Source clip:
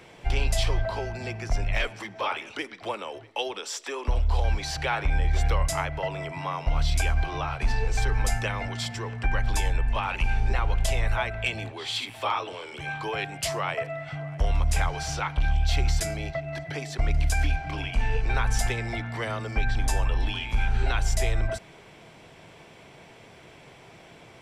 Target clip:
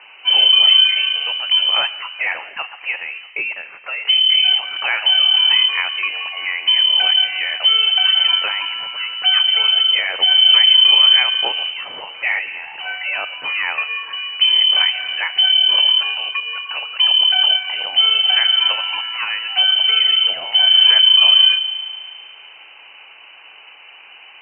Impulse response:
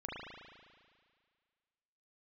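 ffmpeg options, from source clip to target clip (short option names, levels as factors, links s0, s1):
-filter_complex "[0:a]asplit=2[s0][s1];[1:a]atrim=start_sample=2205,lowpass=1600[s2];[s1][s2]afir=irnorm=-1:irlink=0,volume=0.224[s3];[s0][s3]amix=inputs=2:normalize=0,lowpass=f=2600:t=q:w=0.5098,lowpass=f=2600:t=q:w=0.6013,lowpass=f=2600:t=q:w=0.9,lowpass=f=2600:t=q:w=2.563,afreqshift=-3100,highpass=f=560:p=1,volume=2.37"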